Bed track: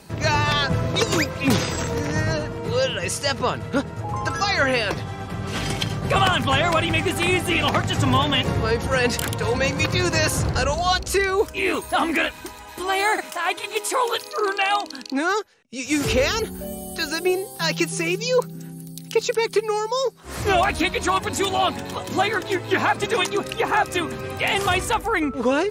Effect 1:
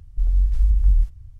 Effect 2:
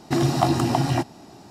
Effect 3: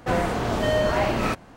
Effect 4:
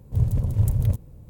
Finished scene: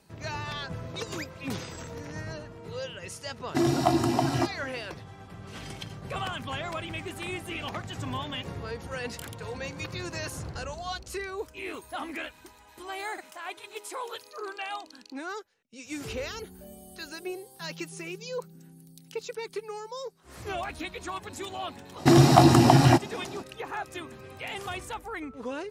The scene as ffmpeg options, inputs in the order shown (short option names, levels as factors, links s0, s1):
-filter_complex "[2:a]asplit=2[s0][s1];[0:a]volume=0.178[s2];[s0]aecho=1:1:3:0.41[s3];[s1]acontrast=33[s4];[s3]atrim=end=1.5,asetpts=PTS-STARTPTS,volume=0.596,afade=t=in:d=0.1,afade=t=out:st=1.4:d=0.1,adelay=3440[s5];[s4]atrim=end=1.5,asetpts=PTS-STARTPTS,volume=0.891,afade=t=in:d=0.05,afade=t=out:st=1.45:d=0.05,adelay=21950[s6];[s2][s5][s6]amix=inputs=3:normalize=0"